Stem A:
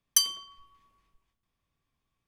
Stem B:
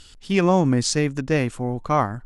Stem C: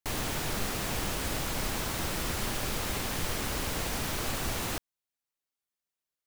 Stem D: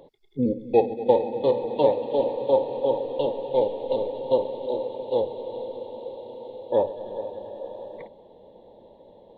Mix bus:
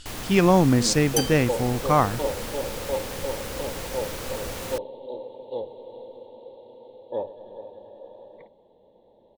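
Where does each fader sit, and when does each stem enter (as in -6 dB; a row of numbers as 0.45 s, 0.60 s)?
-4.0 dB, +0.5 dB, -2.0 dB, -8.0 dB; 1.00 s, 0.00 s, 0.00 s, 0.40 s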